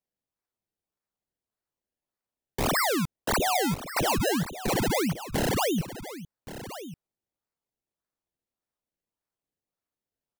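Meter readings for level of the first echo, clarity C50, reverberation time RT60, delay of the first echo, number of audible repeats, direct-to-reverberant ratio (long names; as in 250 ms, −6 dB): −13.5 dB, no reverb audible, no reverb audible, 1,127 ms, 1, no reverb audible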